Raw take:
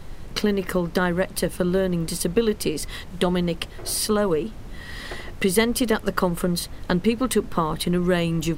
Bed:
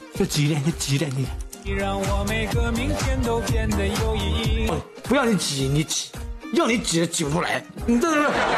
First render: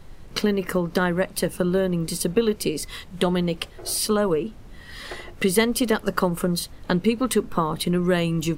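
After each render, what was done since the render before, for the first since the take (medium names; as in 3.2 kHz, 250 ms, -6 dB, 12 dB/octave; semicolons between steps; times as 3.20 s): noise print and reduce 6 dB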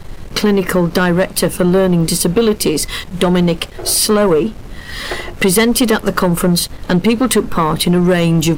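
in parallel at -0.5 dB: peak limiter -17 dBFS, peak gain reduction 11 dB; on the sum: waveshaping leveller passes 2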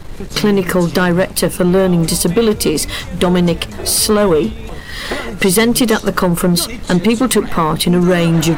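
add bed -7.5 dB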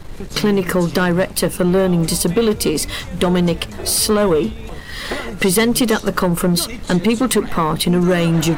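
trim -3 dB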